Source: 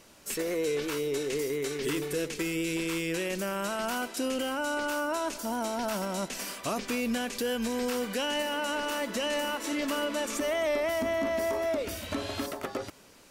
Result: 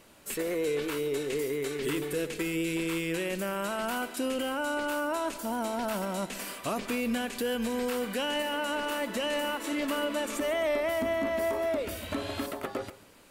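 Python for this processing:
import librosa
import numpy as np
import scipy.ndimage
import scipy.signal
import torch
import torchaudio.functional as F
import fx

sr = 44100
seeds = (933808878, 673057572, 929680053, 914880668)

p1 = fx.peak_eq(x, sr, hz=5700.0, db=-7.5, octaves=0.62)
y = p1 + fx.echo_single(p1, sr, ms=140, db=-17.0, dry=0)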